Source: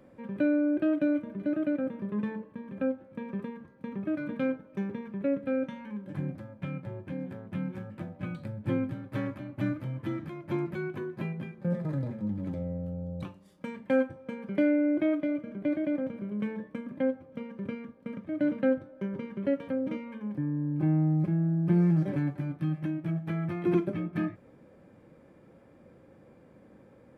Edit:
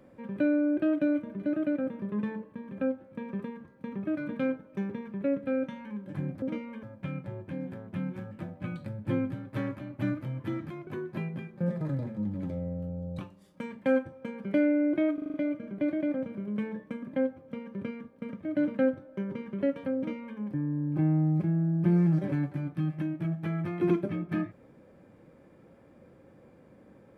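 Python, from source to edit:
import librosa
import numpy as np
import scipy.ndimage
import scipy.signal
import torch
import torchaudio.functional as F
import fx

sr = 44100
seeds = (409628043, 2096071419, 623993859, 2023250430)

y = fx.edit(x, sr, fx.cut(start_s=10.46, length_s=0.45),
    fx.stutter(start_s=15.18, slice_s=0.04, count=6),
    fx.duplicate(start_s=19.81, length_s=0.41, to_s=6.42), tone=tone)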